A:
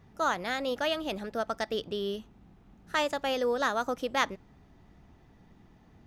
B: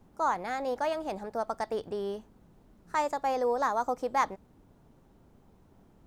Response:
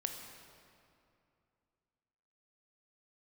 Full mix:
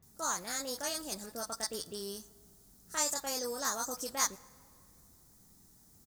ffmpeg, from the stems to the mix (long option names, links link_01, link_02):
-filter_complex "[0:a]volume=-12.5dB,asplit=2[link_01][link_02];[link_02]volume=-14.5dB[link_03];[1:a]aexciter=amount=15.6:drive=4.5:freq=4300,highpass=frequency=1200:width=0.5412,highpass=frequency=1200:width=1.3066,volume=-1,adelay=25,volume=-4.5dB,asplit=2[link_04][link_05];[link_05]volume=-16dB[link_06];[2:a]atrim=start_sample=2205[link_07];[link_03][link_06]amix=inputs=2:normalize=0[link_08];[link_08][link_07]afir=irnorm=-1:irlink=0[link_09];[link_01][link_04][link_09]amix=inputs=3:normalize=0,tiltshelf=frequency=650:gain=3"